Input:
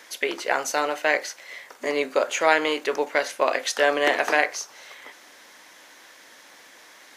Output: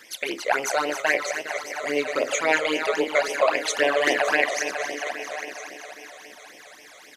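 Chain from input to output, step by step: regenerating reverse delay 0.205 s, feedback 75%, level -9 dB; echo 0.994 s -13.5 dB; phaser stages 12, 3.7 Hz, lowest notch 270–1400 Hz; gain +2.5 dB

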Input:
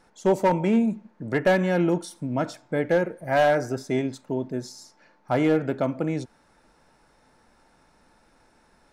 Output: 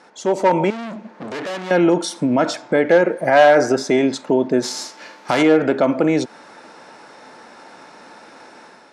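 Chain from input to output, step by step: 4.62–5.41 spectral whitening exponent 0.6; in parallel at +3 dB: compressor, threshold -32 dBFS, peak gain reduction 15 dB; on the sum: limiter -16.5 dBFS, peak gain reduction 10 dB; AGC gain up to 7 dB; 0.7–1.71 overloaded stage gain 29.5 dB; BPF 280–6600 Hz; gain +5 dB

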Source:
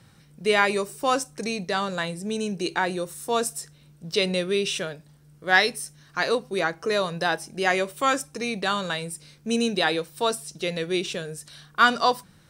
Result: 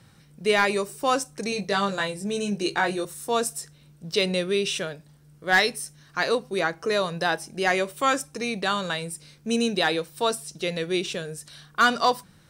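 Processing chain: hard clip -11.5 dBFS, distortion -19 dB; 1.5–3.05 doubler 20 ms -4 dB

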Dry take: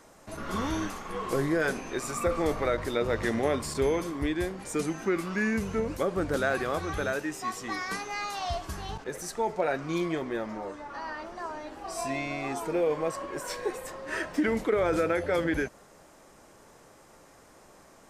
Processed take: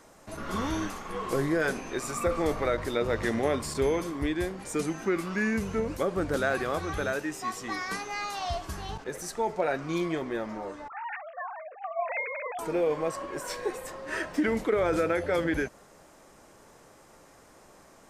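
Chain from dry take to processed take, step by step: 10.88–12.59 sine-wave speech

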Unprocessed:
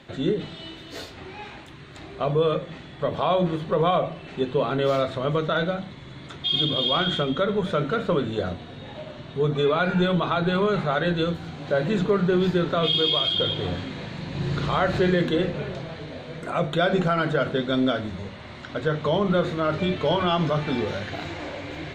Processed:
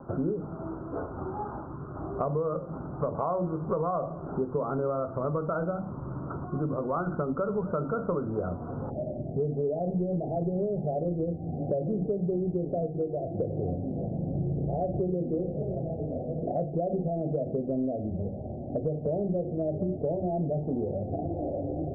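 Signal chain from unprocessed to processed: steep low-pass 1400 Hz 96 dB/oct, from 8.89 s 760 Hz; compressor 5:1, threshold -33 dBFS, peak gain reduction 15 dB; gain +5.5 dB

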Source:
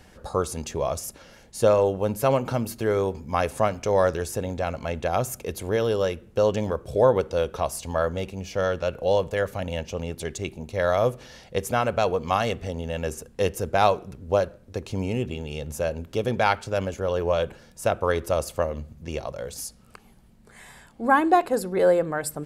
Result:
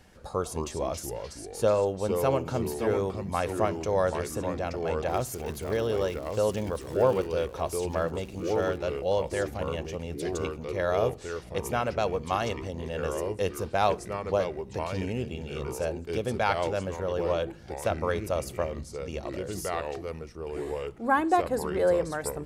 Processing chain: 5.08–7.26 crackle 160/s -30 dBFS; echoes that change speed 0.15 s, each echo -3 st, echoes 2, each echo -6 dB; gain -5 dB

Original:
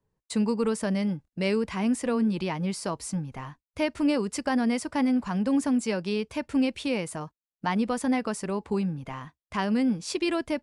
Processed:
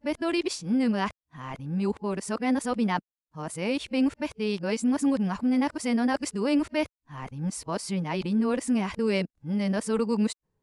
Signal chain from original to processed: whole clip reversed

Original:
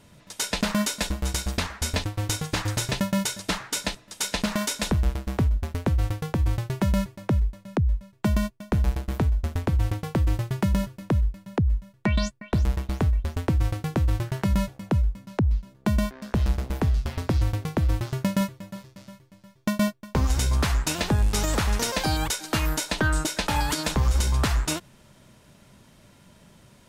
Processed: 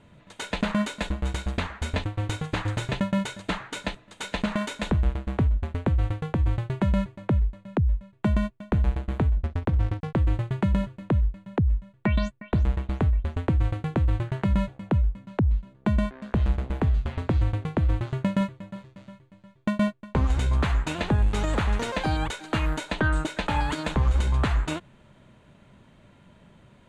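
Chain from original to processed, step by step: bell 5300 Hz -14.5 dB 0.45 oct; 9.37–10.17 backlash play -33 dBFS; air absorption 100 m

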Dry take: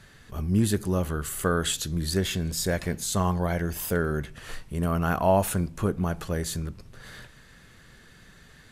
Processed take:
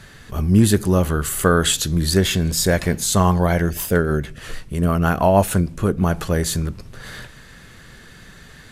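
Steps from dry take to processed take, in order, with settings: 3.69–6.02 rotary speaker horn 6.3 Hz; gain +9 dB

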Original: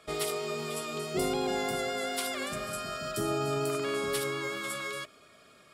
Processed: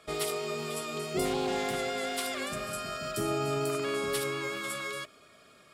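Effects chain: rattling part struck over -47 dBFS, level -41 dBFS; 1.25–2.41 Doppler distortion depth 0.14 ms

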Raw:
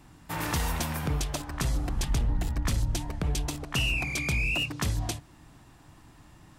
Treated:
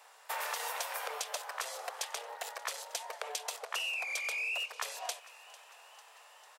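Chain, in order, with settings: steep high-pass 460 Hz 72 dB/oct; compressor, threshold -36 dBFS, peak gain reduction 9.5 dB; frequency-shifting echo 0.448 s, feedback 62%, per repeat +60 Hz, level -19.5 dB; gain +2 dB

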